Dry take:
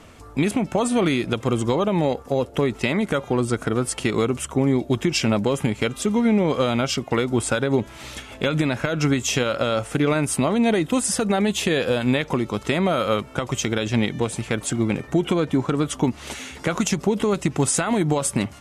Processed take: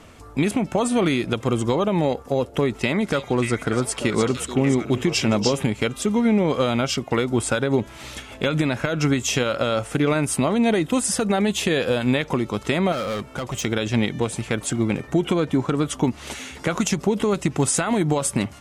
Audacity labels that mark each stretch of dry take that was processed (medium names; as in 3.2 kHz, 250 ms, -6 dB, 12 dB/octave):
2.750000	5.640000	repeats whose band climbs or falls 294 ms, band-pass from 5.1 kHz, each repeat -1.4 oct, level -1 dB
12.920000	13.630000	hard clipper -23.5 dBFS